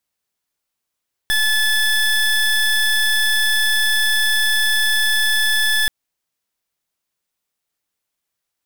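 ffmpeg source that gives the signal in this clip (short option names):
-f lavfi -i "aevalsrc='0.15*(2*lt(mod(1730*t,1),0.25)-1)':d=4.58:s=44100"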